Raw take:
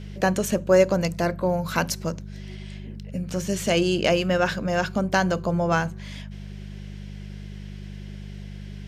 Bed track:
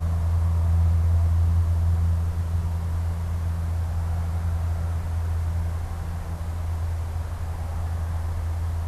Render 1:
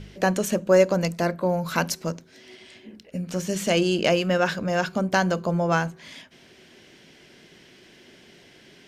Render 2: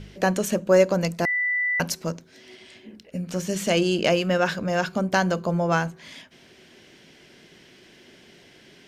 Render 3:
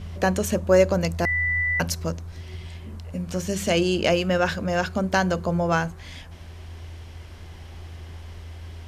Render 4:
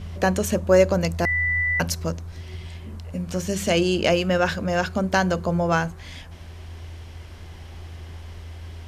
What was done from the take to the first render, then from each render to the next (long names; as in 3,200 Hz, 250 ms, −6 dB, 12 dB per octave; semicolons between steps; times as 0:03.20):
hum removal 50 Hz, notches 4
0:01.25–0:01.80: beep over 1,980 Hz −21 dBFS
mix in bed track −12 dB
level +1 dB